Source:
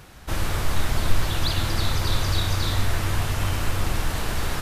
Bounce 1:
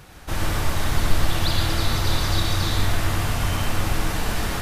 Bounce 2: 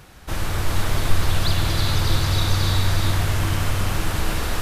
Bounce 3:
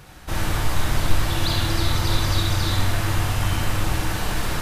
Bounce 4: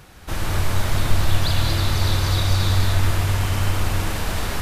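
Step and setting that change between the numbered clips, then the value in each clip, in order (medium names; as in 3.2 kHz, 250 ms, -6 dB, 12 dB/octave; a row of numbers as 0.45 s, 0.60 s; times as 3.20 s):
gated-style reverb, gate: 150 ms, 460 ms, 100 ms, 250 ms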